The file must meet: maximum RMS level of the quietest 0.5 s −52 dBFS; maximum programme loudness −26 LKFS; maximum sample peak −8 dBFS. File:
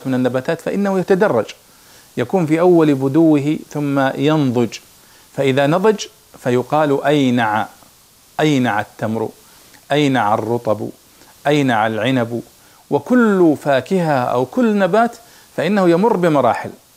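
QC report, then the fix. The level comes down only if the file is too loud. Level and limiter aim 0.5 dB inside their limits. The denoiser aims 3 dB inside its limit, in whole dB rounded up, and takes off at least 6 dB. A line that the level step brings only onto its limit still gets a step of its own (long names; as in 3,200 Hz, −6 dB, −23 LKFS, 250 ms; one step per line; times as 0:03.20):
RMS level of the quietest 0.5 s −49 dBFS: out of spec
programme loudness −16.5 LKFS: out of spec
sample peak −2.5 dBFS: out of spec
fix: level −10 dB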